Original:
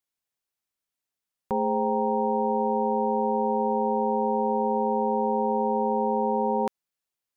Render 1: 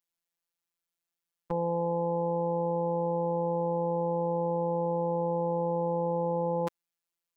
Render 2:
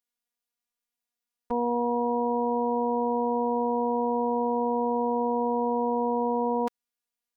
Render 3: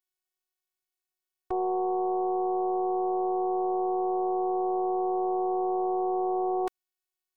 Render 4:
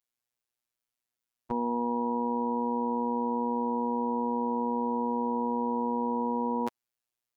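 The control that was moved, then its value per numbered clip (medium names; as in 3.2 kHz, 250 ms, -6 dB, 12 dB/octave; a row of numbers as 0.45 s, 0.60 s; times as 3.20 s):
robot voice, frequency: 170 Hz, 240 Hz, 370 Hz, 120 Hz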